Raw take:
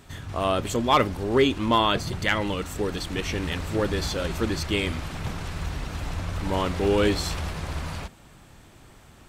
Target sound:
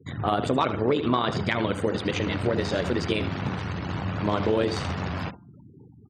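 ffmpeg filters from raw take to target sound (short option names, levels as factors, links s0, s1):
-filter_complex "[0:a]tremolo=f=84:d=0.621,asplit=2[s0][s1];[s1]aecho=0:1:115|230:0.224|0.0358[s2];[s0][s2]amix=inputs=2:normalize=0,afftfilt=real='re*gte(hypot(re,im),0.00631)':imag='im*gte(hypot(re,im),0.00631)':win_size=1024:overlap=0.75,acrossover=split=5400[s3][s4];[s4]acompressor=threshold=0.00447:ratio=4:attack=1:release=60[s5];[s3][s5]amix=inputs=2:normalize=0,bandreject=f=159.7:t=h:w=4,bandreject=f=319.4:t=h:w=4,bandreject=f=479.1:t=h:w=4,bandreject=f=638.8:t=h:w=4,bandreject=f=798.5:t=h:w=4,bandreject=f=958.2:t=h:w=4,bandreject=f=1117.9:t=h:w=4,bandreject=f=1277.6:t=h:w=4,bandreject=f=1437.3:t=h:w=4,acompressor=threshold=0.0447:ratio=8,highshelf=f=2500:g=-6.5,atempo=1.4,highpass=f=86:w=0.5412,highpass=f=86:w=1.3066,asetrate=48000,aresample=44100,lowpass=10000,volume=2.66"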